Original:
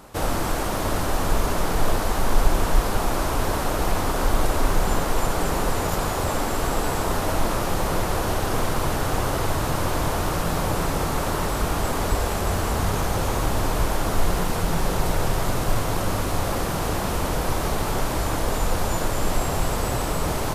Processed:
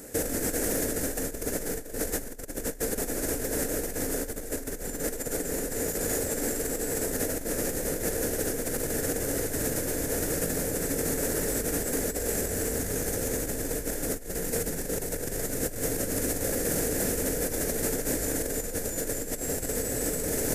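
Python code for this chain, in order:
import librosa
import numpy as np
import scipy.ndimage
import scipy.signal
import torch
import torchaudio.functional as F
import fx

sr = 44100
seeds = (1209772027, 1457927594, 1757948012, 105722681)

y = fx.curve_eq(x, sr, hz=(110.0, 530.0, 1100.0, 1700.0, 3400.0, 7200.0), db=(0, 6, -14, 8, -4, 15))
y = fx.over_compress(y, sr, threshold_db=-22.0, ratio=-0.5)
y = fx.small_body(y, sr, hz=(270.0, 450.0, 3500.0), ring_ms=45, db=8)
y = y * 10.0 ** (-8.5 / 20.0)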